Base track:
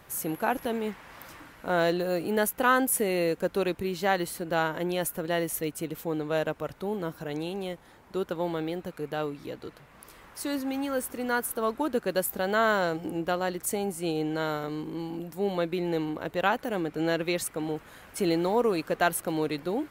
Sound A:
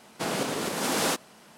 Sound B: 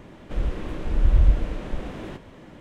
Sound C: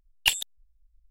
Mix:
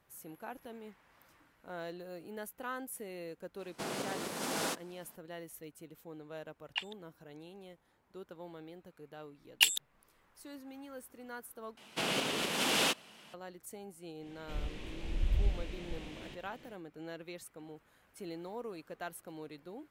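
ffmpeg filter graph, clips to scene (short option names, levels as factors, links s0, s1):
-filter_complex "[1:a]asplit=2[s0][s1];[3:a]asplit=2[s2][s3];[0:a]volume=0.126[s4];[s2]highpass=740,lowpass=2300[s5];[s3]tiltshelf=f=670:g=-7.5[s6];[s1]equalizer=f=2900:w=1.6:g=11[s7];[2:a]highshelf=f=1900:t=q:w=1.5:g=9[s8];[s4]asplit=2[s9][s10];[s9]atrim=end=11.774[s11];[s7]atrim=end=1.57,asetpts=PTS-STARTPTS,volume=0.473[s12];[s10]atrim=start=13.336[s13];[s0]atrim=end=1.57,asetpts=PTS-STARTPTS,volume=0.335,afade=t=in:d=0.004:c=hsin,afade=t=out:st=1.566:d=0.004:c=hsin,adelay=3590[s14];[s5]atrim=end=1.1,asetpts=PTS-STARTPTS,volume=0.355,afade=t=in:d=0.004:c=hsin,afade=t=out:st=1.096:d=0.004:c=hsin,adelay=286650S[s15];[s6]atrim=end=1.1,asetpts=PTS-STARTPTS,volume=0.335,afade=t=in:d=0.004:c=hsin,afade=t=out:st=1.096:d=0.004:c=hsin,adelay=9350[s16];[s8]atrim=end=2.6,asetpts=PTS-STARTPTS,volume=0.211,afade=t=in:d=0.1,afade=t=out:st=2.5:d=0.1,adelay=14180[s17];[s11][s12]acrossfade=d=0.004:c1=hsin:c2=hsin[s18];[s18][s13]acrossfade=d=0.004:c1=hsin:c2=hsin[s19];[s19][s14][s15][s16][s17]amix=inputs=5:normalize=0"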